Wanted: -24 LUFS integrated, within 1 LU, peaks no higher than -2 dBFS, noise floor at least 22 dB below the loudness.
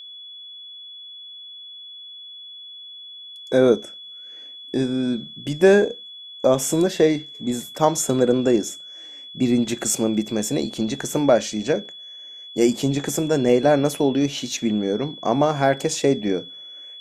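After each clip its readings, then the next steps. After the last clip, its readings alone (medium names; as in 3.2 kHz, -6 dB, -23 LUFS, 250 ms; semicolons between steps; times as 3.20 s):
steady tone 3.4 kHz; tone level -37 dBFS; loudness -21.0 LUFS; peak level -3.0 dBFS; loudness target -24.0 LUFS
-> band-stop 3.4 kHz, Q 30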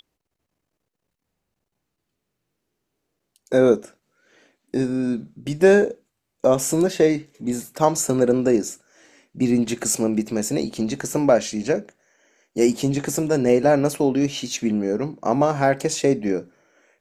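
steady tone not found; loudness -21.0 LUFS; peak level -3.5 dBFS; loudness target -24.0 LUFS
-> trim -3 dB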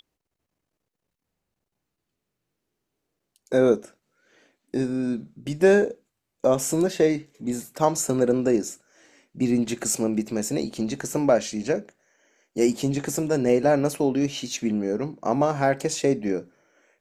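loudness -24.0 LUFS; peak level -6.5 dBFS; noise floor -82 dBFS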